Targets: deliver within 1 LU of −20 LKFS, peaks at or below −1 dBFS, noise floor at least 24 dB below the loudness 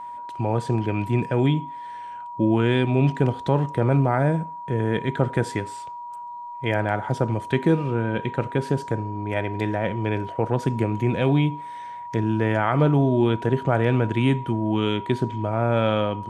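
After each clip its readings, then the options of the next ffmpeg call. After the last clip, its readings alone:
interfering tone 960 Hz; level of the tone −33 dBFS; integrated loudness −23.0 LKFS; sample peak −6.5 dBFS; target loudness −20.0 LKFS
→ -af "bandreject=frequency=960:width=30"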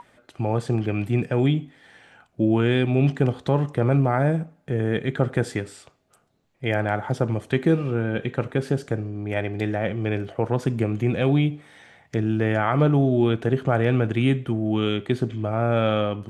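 interfering tone none found; integrated loudness −23.5 LKFS; sample peak −7.0 dBFS; target loudness −20.0 LKFS
→ -af "volume=3.5dB"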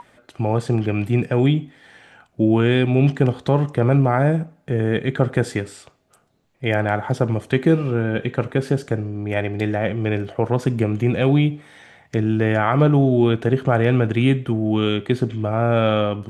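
integrated loudness −20.0 LKFS; sample peak −3.5 dBFS; background noise floor −60 dBFS

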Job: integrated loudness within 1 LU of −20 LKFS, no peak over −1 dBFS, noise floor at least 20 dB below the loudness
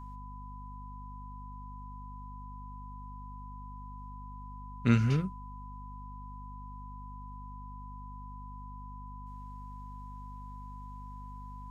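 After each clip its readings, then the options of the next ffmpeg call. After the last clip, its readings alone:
mains hum 50 Hz; hum harmonics up to 250 Hz; level of the hum −43 dBFS; interfering tone 1,000 Hz; level of the tone −47 dBFS; integrated loudness −39.5 LKFS; sample peak −11.5 dBFS; target loudness −20.0 LKFS
→ -af "bandreject=frequency=50:width_type=h:width=6,bandreject=frequency=100:width_type=h:width=6,bandreject=frequency=150:width_type=h:width=6,bandreject=frequency=200:width_type=h:width=6,bandreject=frequency=250:width_type=h:width=6"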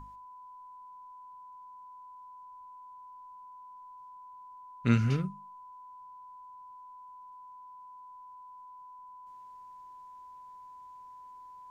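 mains hum none found; interfering tone 1,000 Hz; level of the tone −47 dBFS
→ -af "bandreject=frequency=1000:width=30"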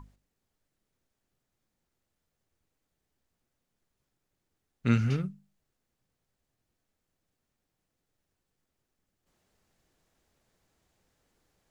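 interfering tone none found; integrated loudness −29.5 LKFS; sample peak −12.0 dBFS; target loudness −20.0 LKFS
→ -af "volume=9.5dB"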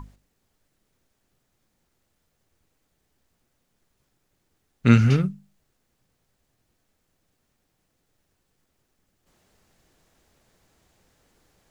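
integrated loudness −20.0 LKFS; sample peak −2.5 dBFS; background noise floor −74 dBFS

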